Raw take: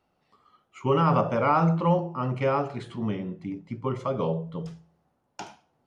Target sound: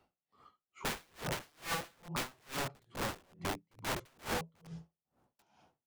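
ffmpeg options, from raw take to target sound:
-filter_complex "[0:a]asettb=1/sr,asplit=3[s0][s1][s2];[s0]atrim=end=1.524[s3];[s1]atrim=start=1.52:end=4.17,asetpts=PTS-STARTPTS,afade=t=in:d=0.004:c=qsin,afade=t=out:st=2.646:d=0.004:c=qsin,adynamicequalizer=threshold=0.0126:dfrequency=120:dqfactor=1.1:tfrequency=120:tqfactor=1.1:attack=5:release=100:ratio=0.375:range=3:mode=boostabove:tftype=bell[s4];[s2]atrim=start=4.166[s5];[s3][s4]acrossfade=d=0.004:c1=hsin:c2=qsin[s6];[s6][s5]acrossfade=d=0.004:c1=qsin:c2=hsin,acrossover=split=150[s7][s8];[s8]acompressor=threshold=0.02:ratio=4[s9];[s7][s9]amix=inputs=2:normalize=0,aeval=exprs='(mod(35.5*val(0)+1,2)-1)/35.5':c=same,aeval=exprs='val(0)*pow(10,-36*(0.5-0.5*cos(2*PI*2.3*n/s))/20)':c=same,volume=1.33"

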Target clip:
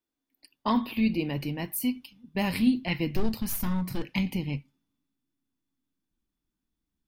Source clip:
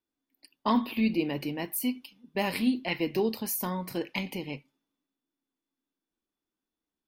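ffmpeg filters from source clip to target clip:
-filter_complex "[0:a]asettb=1/sr,asplit=3[s0][s1][s2];[s0]atrim=end=3.094[s3];[s1]atrim=start=3.09:end=4.09,asetpts=PTS-STARTPTS,afade=t=in:d=0.004:c=qsin,afade=t=out:st=0.996:d=0.004:c=qsin,aeval=exprs='clip(val(0),-1,0.0224)':c=same[s4];[s2]atrim=start=4.086[s5];[s3][s4]acrossfade=d=0.004:c1=hsin:c2=qsin[s6];[s6][s5]acrossfade=d=0.004:c1=qsin:c2=hsin,asubboost=boost=7.5:cutoff=170"

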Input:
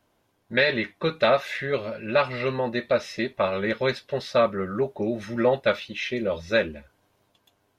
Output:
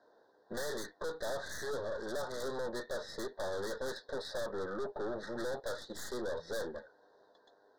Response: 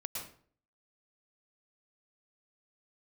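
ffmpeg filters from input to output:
-filter_complex "[0:a]asplit=2[s0][s1];[s1]acompressor=threshold=0.0316:ratio=6,volume=1.06[s2];[s0][s2]amix=inputs=2:normalize=0,highpass=430,equalizer=f=460:t=q:w=4:g=9,equalizer=f=1200:t=q:w=4:g=-7,equalizer=f=2200:t=q:w=4:g=8,equalizer=f=3300:t=q:w=4:g=-10,lowpass=f=4200:w=0.5412,lowpass=f=4200:w=1.3066,aeval=exprs='(tanh(39.8*val(0)+0.55)-tanh(0.55))/39.8':c=same,alimiter=level_in=2.82:limit=0.0631:level=0:latency=1:release=384,volume=0.355,asuperstop=centerf=2500:order=12:qfactor=1.5,volume=1.12"

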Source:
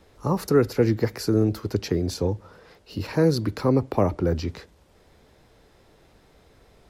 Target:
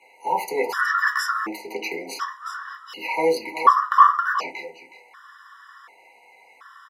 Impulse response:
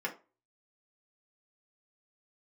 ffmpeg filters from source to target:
-filter_complex "[0:a]highpass=f=1200:t=q:w=4,bandreject=f=4800:w=30,asplit=2[s0][s1];[s1]asoftclip=type=hard:threshold=0.1,volume=0.355[s2];[s0][s2]amix=inputs=2:normalize=0,aecho=1:1:368:0.224[s3];[1:a]atrim=start_sample=2205[s4];[s3][s4]afir=irnorm=-1:irlink=0,afftfilt=real='re*gt(sin(2*PI*0.68*pts/sr)*(1-2*mod(floor(b*sr/1024/990),2)),0)':imag='im*gt(sin(2*PI*0.68*pts/sr)*(1-2*mod(floor(b*sr/1024/990),2)),0)':win_size=1024:overlap=0.75,volume=1.88"

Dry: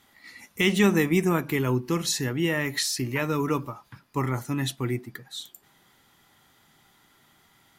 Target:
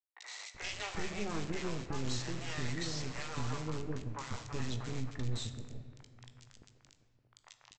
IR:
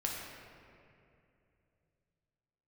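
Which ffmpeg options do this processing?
-filter_complex "[0:a]acrossover=split=5600[s0][s1];[s1]acompressor=threshold=0.00355:ratio=4:attack=1:release=60[s2];[s0][s2]amix=inputs=2:normalize=0,lowshelf=f=130:t=q:w=3:g=12.5,acompressor=threshold=0.00562:ratio=2.5,aresample=16000,acrusher=bits=5:dc=4:mix=0:aa=0.000001,aresample=44100,acrossover=split=560|2000[s3][s4][s5];[s5]adelay=40[s6];[s3]adelay=380[s7];[s7][s4][s6]amix=inputs=3:normalize=0,asplit=2[s8][s9];[1:a]atrim=start_sample=2205,adelay=19[s10];[s9][s10]afir=irnorm=-1:irlink=0,volume=0.299[s11];[s8][s11]amix=inputs=2:normalize=0,volume=2"

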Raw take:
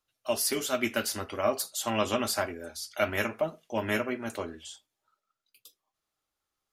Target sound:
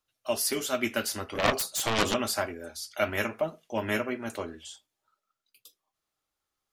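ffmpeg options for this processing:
-filter_complex "[0:a]asettb=1/sr,asplit=3[s0][s1][s2];[s0]atrim=end=1.354[s3];[s1]atrim=start=1.35:end=2.14,asetpts=PTS-STARTPTS,afade=t=in:d=0.004:c=qsin,afade=t=out:st=0.786:d=0.004:c=qsin,aeval=exprs='0.224*(cos(1*acos(clip(val(0)/0.224,-1,1)))-cos(1*PI/2))+0.1*(cos(7*acos(clip(val(0)/0.224,-1,1)))-cos(7*PI/2))':c=same[s4];[s2]atrim=start=2.136[s5];[s3][s4]acrossfade=d=0.004:c1=hsin:c2=qsin[s6];[s6][s5]acrossfade=d=0.004:c1=qsin:c2=hsin"

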